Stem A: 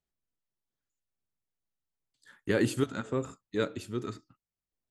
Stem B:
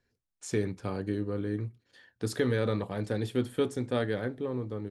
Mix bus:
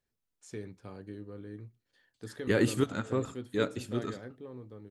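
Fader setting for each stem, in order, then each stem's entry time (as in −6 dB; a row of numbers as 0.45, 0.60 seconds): +0.5, −12.0 decibels; 0.00, 0.00 seconds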